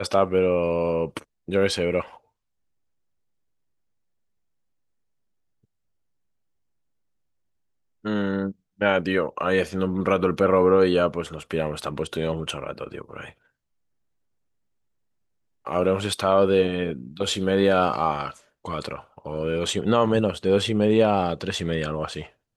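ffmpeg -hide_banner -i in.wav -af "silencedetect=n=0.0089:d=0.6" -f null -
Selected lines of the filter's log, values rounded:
silence_start: 2.17
silence_end: 8.04 | silence_duration: 5.87
silence_start: 13.31
silence_end: 15.67 | silence_duration: 2.36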